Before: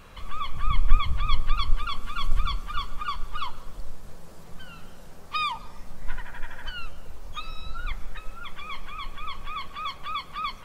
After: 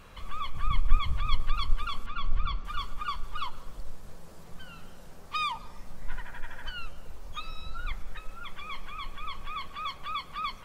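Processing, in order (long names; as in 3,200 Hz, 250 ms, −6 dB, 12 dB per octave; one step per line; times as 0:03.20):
in parallel at −8 dB: asymmetric clip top −22.5 dBFS
0:02.06–0:02.65: on the sum: high-frequency loss of the air 170 metres
level −5.5 dB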